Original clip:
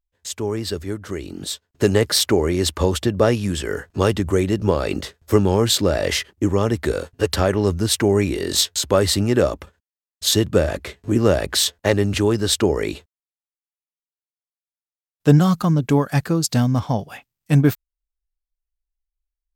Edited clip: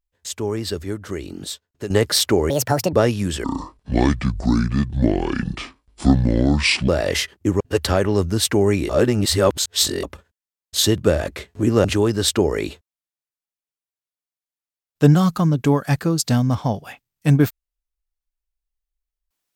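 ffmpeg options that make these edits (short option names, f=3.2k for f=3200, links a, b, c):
-filter_complex "[0:a]asplit=10[a][b][c][d][e][f][g][h][i][j];[a]atrim=end=1.9,asetpts=PTS-STARTPTS,afade=t=out:st=1.32:d=0.58:silence=0.177828[k];[b]atrim=start=1.9:end=2.504,asetpts=PTS-STARTPTS,afade=t=in:d=0.004:c=hsin:silence=0.177828[l];[c]atrim=start=2.5:end=3.17,asetpts=PTS-STARTPTS,asetrate=68796,aresample=44100,atrim=end_sample=18940,asetpts=PTS-STARTPTS[m];[d]atrim=start=3.166:end=3.684[n];[e]atrim=start=3.68:end=5.85,asetpts=PTS-STARTPTS,asetrate=27783,aresample=44100[o];[f]atrim=start=5.846:end=6.572[p];[g]atrim=start=7.088:end=8.382[q];[h]atrim=start=8.378:end=9.522,asetpts=PTS-STARTPTS,areverse[r];[i]atrim=start=9.518:end=11.332[s];[j]atrim=start=12.088[t];[k][l]concat=n=2:v=0:a=1[u];[u][m]acrossfade=d=0.004:c1=hsin:c2=hsin[v];[v][n]acrossfade=d=0.004:c1=hsin:c2=hsin[w];[w][o]acrossfade=d=0.004:c1=hsin:c2=hsin[x];[x][p]acrossfade=d=0.004:c1=hsin:c2=hsin[y];[y][q]acrossfade=d=0.004:c1=hsin:c2=hsin[z];[z][r]acrossfade=d=0.004:c1=hsin:c2=hsin[aa];[aa][s]acrossfade=d=0.004:c1=hsin:c2=hsin[ab];[ab][t]acrossfade=d=0.004:c1=hsin:c2=hsin"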